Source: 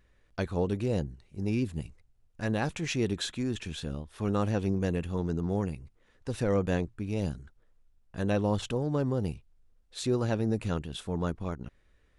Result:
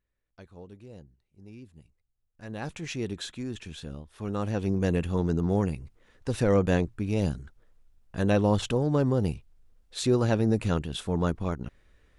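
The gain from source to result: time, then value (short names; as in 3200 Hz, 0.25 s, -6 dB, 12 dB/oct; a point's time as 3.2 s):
1.85 s -17.5 dB
2.47 s -10.5 dB
2.68 s -3.5 dB
4.29 s -3.5 dB
4.94 s +4.5 dB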